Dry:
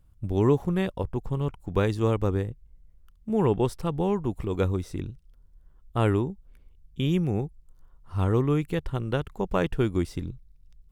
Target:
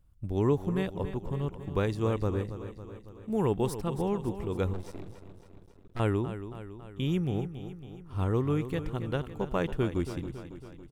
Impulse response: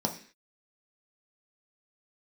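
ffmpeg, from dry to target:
-filter_complex "[0:a]asettb=1/sr,asplit=3[link_01][link_02][link_03];[link_01]atrim=end=3.324[link_04];[link_02]atrim=start=3.32:end=3.78,asetpts=PTS-STARTPTS,afade=type=in:duration=0.004:curve=qsin,afade=type=out:start_time=0.456:duration=0.004:curve=qsin,highshelf=frequency=7200:gain=11[link_05];[link_03]atrim=start=3.776[link_06];[link_04][link_05]acrossfade=duration=0.004:curve1=hsin:curve2=qsin[link_07];[link_07][link_06]acrossfade=duration=0.004:curve1=qsin:curve2=hsin,aecho=1:1:277|554|831|1108|1385|1662|1939:0.266|0.157|0.0926|0.0546|0.0322|0.019|0.0112,asettb=1/sr,asplit=3[link_08][link_09][link_10];[link_08]atrim=end=4.734[link_11];[link_09]atrim=start=4.73:end=6,asetpts=PTS-STARTPTS,afade=type=in:duration=0.004:curve=qsin,afade=type=out:start_time=1.266:duration=0.004:curve=qsin,aeval=exprs='max(val(0),0)':channel_layout=same[link_12];[link_10]atrim=start=5.996[link_13];[link_11][link_12]acrossfade=duration=0.004:curve1=hsin:curve2=qsin[link_14];[link_14][link_13]acrossfade=duration=0.004:curve1=qsin:curve2=hsin,volume=-4.5dB"

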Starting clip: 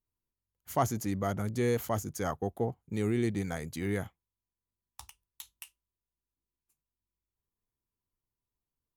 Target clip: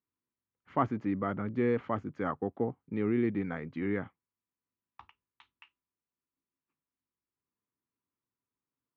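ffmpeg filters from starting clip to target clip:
ffmpeg -i in.wav -af "highpass=140,equalizer=frequency=270:width_type=q:width=4:gain=6,equalizer=frequency=690:width_type=q:width=4:gain=-5,equalizer=frequency=1200:width_type=q:width=4:gain=4,lowpass=frequency=2500:width=0.5412,lowpass=frequency=2500:width=1.3066" out.wav

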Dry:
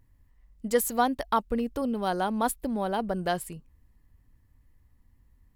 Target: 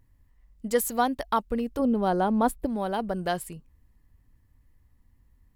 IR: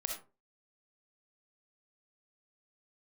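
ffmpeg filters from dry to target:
-filter_complex "[0:a]asettb=1/sr,asplit=3[link_01][link_02][link_03];[link_01]atrim=end=1.794[link_04];[link_02]atrim=start=1.79:end=2.66,asetpts=PTS-STARTPTS,afade=type=in:duration=0.004:curve=qsin,afade=type=out:start_time=0.866:duration=0.004:curve=qsin,tiltshelf=frequency=1300:gain=6[link_05];[link_03]atrim=start=2.656[link_06];[link_04][link_05]acrossfade=duration=0.004:curve1=hsin:curve2=qsin[link_07];[link_07][link_06]acrossfade=duration=0.004:curve1=qsin:curve2=hsin"

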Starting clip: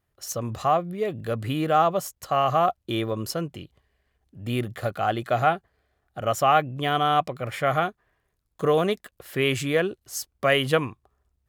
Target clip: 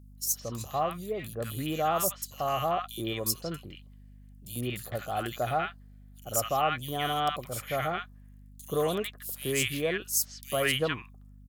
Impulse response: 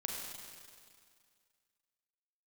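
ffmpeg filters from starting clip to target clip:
-filter_complex "[0:a]acrossover=split=1200|3900[link_01][link_02][link_03];[link_01]adelay=90[link_04];[link_02]adelay=160[link_05];[link_04][link_05][link_03]amix=inputs=3:normalize=0,aeval=exprs='val(0)+0.00708*(sin(2*PI*50*n/s)+sin(2*PI*2*50*n/s)/2+sin(2*PI*3*50*n/s)/3+sin(2*PI*4*50*n/s)/4+sin(2*PI*5*50*n/s)/5)':channel_layout=same,crystalizer=i=3.5:c=0,volume=-7dB"

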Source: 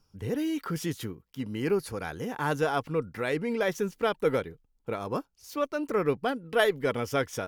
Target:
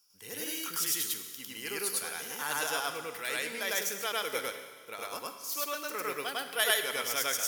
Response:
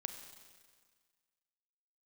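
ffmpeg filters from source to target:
-filter_complex "[0:a]aderivative,asplit=2[link_01][link_02];[1:a]atrim=start_sample=2205,adelay=102[link_03];[link_02][link_03]afir=irnorm=-1:irlink=0,volume=4dB[link_04];[link_01][link_04]amix=inputs=2:normalize=0,volume=8.5dB"

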